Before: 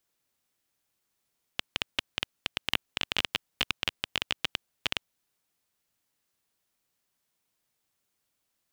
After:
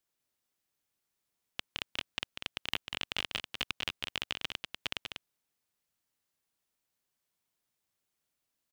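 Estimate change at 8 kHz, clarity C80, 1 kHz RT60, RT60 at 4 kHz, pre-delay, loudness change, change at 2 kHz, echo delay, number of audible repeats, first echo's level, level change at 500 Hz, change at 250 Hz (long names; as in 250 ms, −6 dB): −5.0 dB, no reverb audible, no reverb audible, no reverb audible, no reverb audible, −5.0 dB, −5.0 dB, 194 ms, 1, −6.0 dB, −5.0 dB, −5.0 dB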